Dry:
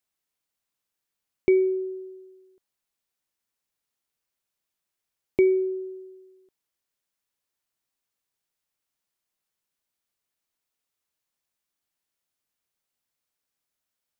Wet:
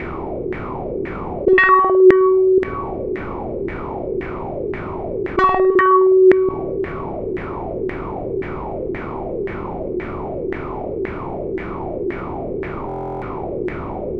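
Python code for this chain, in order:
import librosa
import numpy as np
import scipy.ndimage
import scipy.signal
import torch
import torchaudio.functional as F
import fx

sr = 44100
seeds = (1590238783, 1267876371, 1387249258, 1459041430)

y = fx.bin_compress(x, sr, power=0.6)
y = fx.low_shelf(y, sr, hz=300.0, db=11.0)
y = 10.0 ** (-10.0 / 20.0) * np.tanh(y / 10.0 ** (-10.0 / 20.0))
y = fx.rev_spring(y, sr, rt60_s=2.1, pass_ms=(52,), chirp_ms=70, drr_db=7.5)
y = fx.fold_sine(y, sr, drive_db=18, ceiling_db=-9.0)
y = fx.filter_lfo_lowpass(y, sr, shape='saw_down', hz=1.9, low_hz=350.0, high_hz=1900.0, q=7.1)
y = fx.dynamic_eq(y, sr, hz=980.0, q=0.73, threshold_db=-23.0, ratio=4.0, max_db=-5)
y = fx.buffer_glitch(y, sr, at_s=(12.87,), block=1024, repeats=14)
y = fx.env_flatten(y, sr, amount_pct=50)
y = y * 10.0 ** (-9.0 / 20.0)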